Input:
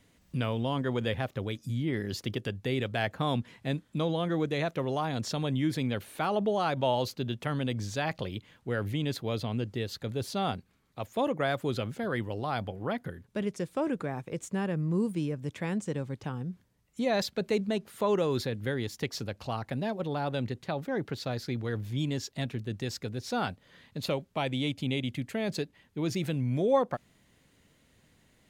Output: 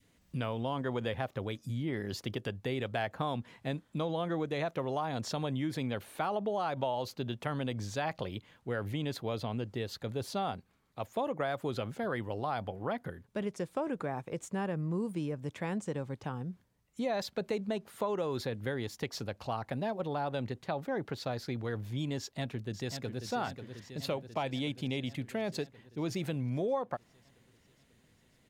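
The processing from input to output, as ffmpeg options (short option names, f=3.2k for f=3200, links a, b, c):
-filter_complex "[0:a]asplit=2[a][b];[b]afade=t=in:st=22.19:d=0.01,afade=t=out:st=23.25:d=0.01,aecho=0:1:540|1080|1620|2160|2700|3240|3780|4320|4860|5400|5940:0.375837|0.263086|0.18416|0.128912|0.0902386|0.063167|0.0442169|0.0309518|0.0216663|0.0151664|0.0106165[c];[a][c]amix=inputs=2:normalize=0,adynamicequalizer=threshold=0.00708:dfrequency=830:dqfactor=0.85:tfrequency=830:tqfactor=0.85:attack=5:release=100:ratio=0.375:range=3:mode=boostabove:tftype=bell,acompressor=threshold=-26dB:ratio=6,volume=-3.5dB"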